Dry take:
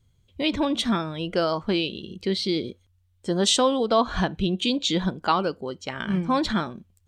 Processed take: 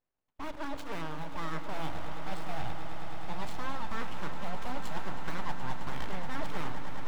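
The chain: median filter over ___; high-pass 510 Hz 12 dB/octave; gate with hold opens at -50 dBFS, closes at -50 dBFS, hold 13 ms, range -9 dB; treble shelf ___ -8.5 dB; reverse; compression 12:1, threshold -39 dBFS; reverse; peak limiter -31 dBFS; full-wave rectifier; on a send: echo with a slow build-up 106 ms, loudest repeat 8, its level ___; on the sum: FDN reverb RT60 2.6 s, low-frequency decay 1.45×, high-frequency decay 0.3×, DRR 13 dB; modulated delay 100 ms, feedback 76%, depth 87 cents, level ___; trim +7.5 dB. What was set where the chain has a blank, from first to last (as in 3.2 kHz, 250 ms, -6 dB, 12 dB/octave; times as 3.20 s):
41 samples, 3 kHz, -14 dB, -22.5 dB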